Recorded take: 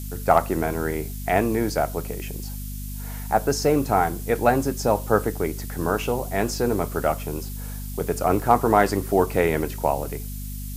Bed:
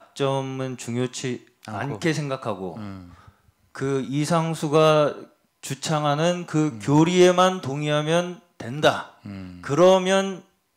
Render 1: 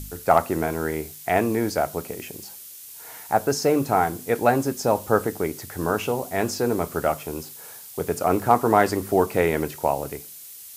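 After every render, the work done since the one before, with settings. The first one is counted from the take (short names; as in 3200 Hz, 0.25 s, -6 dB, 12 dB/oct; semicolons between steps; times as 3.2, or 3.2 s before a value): de-hum 50 Hz, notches 5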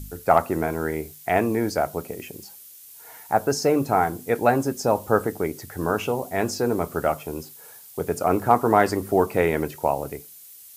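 denoiser 6 dB, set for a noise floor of -42 dBFS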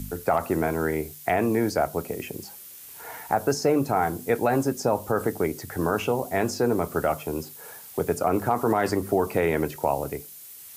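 limiter -10.5 dBFS, peak gain reduction 7 dB; three-band squash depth 40%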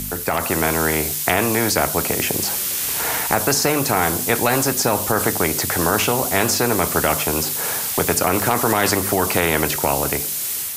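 AGC gain up to 10.5 dB; spectral compressor 2:1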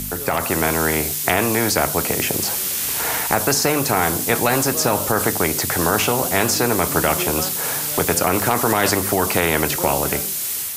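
add bed -14 dB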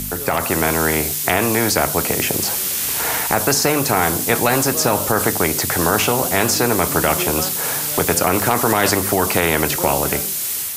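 gain +1.5 dB; limiter -2 dBFS, peak gain reduction 1.5 dB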